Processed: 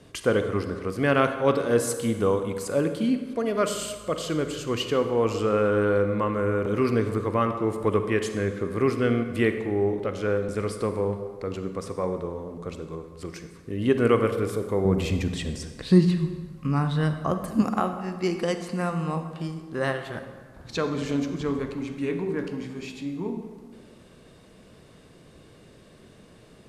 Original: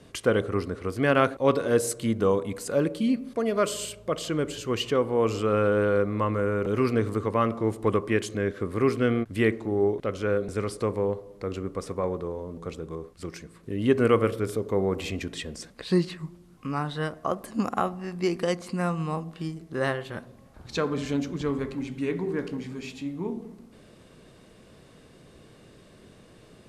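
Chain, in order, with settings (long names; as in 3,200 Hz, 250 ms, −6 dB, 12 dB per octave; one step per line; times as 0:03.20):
0:14.85–0:17.62: bass and treble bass +10 dB, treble +1 dB
convolution reverb RT60 1.6 s, pre-delay 33 ms, DRR 8 dB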